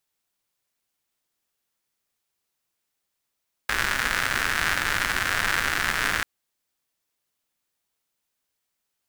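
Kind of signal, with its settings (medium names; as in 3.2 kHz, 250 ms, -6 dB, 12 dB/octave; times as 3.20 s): rain from filtered ticks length 2.54 s, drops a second 170, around 1.6 kHz, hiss -8.5 dB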